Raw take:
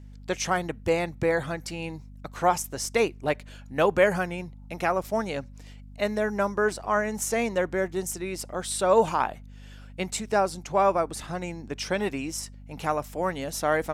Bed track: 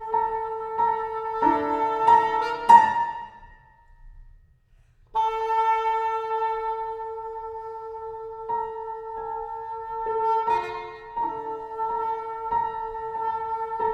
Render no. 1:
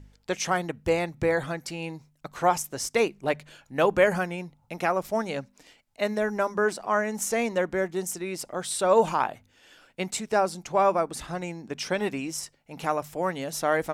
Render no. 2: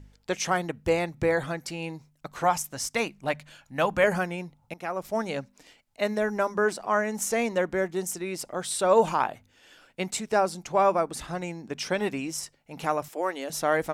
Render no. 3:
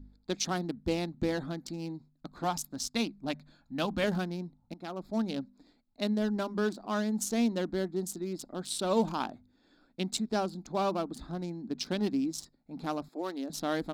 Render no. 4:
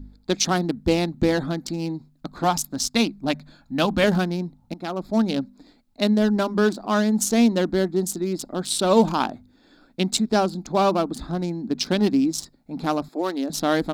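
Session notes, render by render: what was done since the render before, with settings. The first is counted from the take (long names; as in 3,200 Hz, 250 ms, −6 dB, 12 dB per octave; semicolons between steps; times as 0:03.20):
hum removal 50 Hz, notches 5
0:02.44–0:04.04: parametric band 400 Hz −11 dB 0.55 octaves; 0:04.74–0:05.25: fade in, from −14 dB; 0:13.08–0:13.50: Chebyshev high-pass filter 300 Hz, order 3
adaptive Wiener filter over 15 samples; octave-band graphic EQ 125/250/500/1,000/2,000/4,000/8,000 Hz −9/+9/−10/−6/−11/+9/−5 dB
level +10.5 dB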